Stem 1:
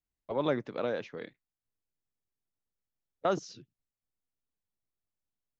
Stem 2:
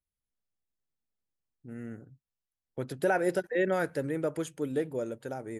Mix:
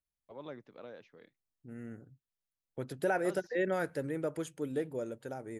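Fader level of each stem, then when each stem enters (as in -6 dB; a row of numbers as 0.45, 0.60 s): -16.0, -4.0 dB; 0.00, 0.00 s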